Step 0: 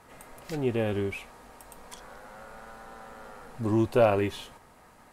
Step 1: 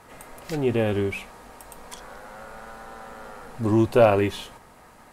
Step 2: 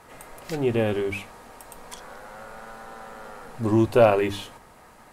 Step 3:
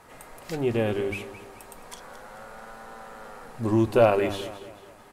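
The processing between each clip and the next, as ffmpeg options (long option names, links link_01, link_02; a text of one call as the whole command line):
ffmpeg -i in.wav -af "bandreject=frequency=64.22:width_type=h:width=4,bandreject=frequency=128.44:width_type=h:width=4,bandreject=frequency=192.66:width_type=h:width=4,bandreject=frequency=256.88:width_type=h:width=4,volume=5dB" out.wav
ffmpeg -i in.wav -af "bandreject=frequency=50:width_type=h:width=6,bandreject=frequency=100:width_type=h:width=6,bandreject=frequency=150:width_type=h:width=6,bandreject=frequency=200:width_type=h:width=6,bandreject=frequency=250:width_type=h:width=6,bandreject=frequency=300:width_type=h:width=6" out.wav
ffmpeg -i in.wav -af "aecho=1:1:218|436|654|872:0.188|0.0829|0.0365|0.016,volume=-2dB" out.wav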